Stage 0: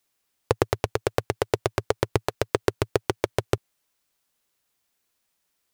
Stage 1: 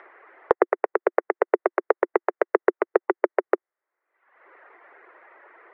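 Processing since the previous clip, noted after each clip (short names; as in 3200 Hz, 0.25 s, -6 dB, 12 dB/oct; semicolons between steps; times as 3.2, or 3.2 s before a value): reverb removal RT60 0.74 s; Chebyshev band-pass 350–2000 Hz, order 4; in parallel at +2 dB: upward compressor, threshold -23 dBFS; on the sum: gain -2 dB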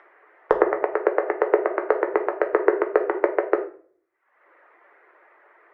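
shoebox room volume 67 m³, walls mixed, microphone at 0.44 m; in parallel at +1 dB: limiter -12 dBFS, peak gain reduction 10.5 dB; on the sum: upward expander 1.5:1, over -29 dBFS; gain -2.5 dB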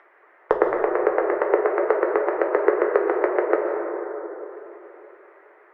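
plate-style reverb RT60 3.6 s, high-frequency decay 0.3×, pre-delay 0.11 s, DRR 2.5 dB; gain -1 dB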